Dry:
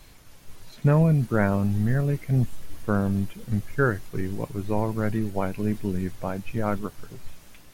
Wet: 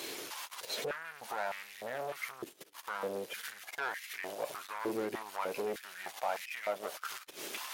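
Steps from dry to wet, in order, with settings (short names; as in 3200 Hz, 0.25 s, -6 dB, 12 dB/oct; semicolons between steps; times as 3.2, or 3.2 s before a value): EQ curve 1100 Hz 0 dB, 3200 Hz +7 dB, 8300 Hz +4 dB; compressor 5:1, threshold -34 dBFS, peak gain reduction 16.5 dB; limiter -29 dBFS, peak gain reduction 6.5 dB; soft clip -40 dBFS, distortion -9 dB; stepped high-pass 3.3 Hz 380–2000 Hz; gain +9 dB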